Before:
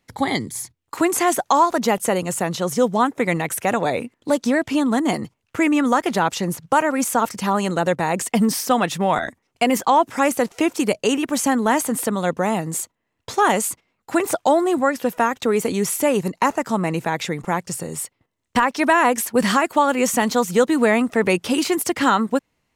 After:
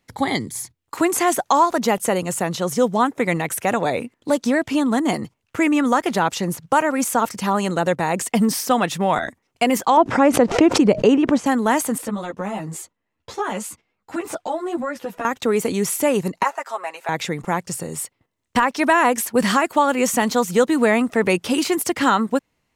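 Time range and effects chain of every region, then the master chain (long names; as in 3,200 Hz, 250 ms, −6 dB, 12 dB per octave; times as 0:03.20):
0:09.97–0:11.46: low-pass filter 5,400 Hz + tilt shelving filter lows +6.5 dB, about 1,200 Hz + background raised ahead of every attack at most 130 dB per second
0:11.98–0:15.25: high-shelf EQ 8,300 Hz −9.5 dB + downward compressor 3 to 1, threshold −19 dBFS + string-ensemble chorus
0:16.43–0:17.09: Bessel high-pass filter 850 Hz, order 4 + high-shelf EQ 2,800 Hz −9 dB + comb filter 7.4 ms, depth 70%
whole clip: no processing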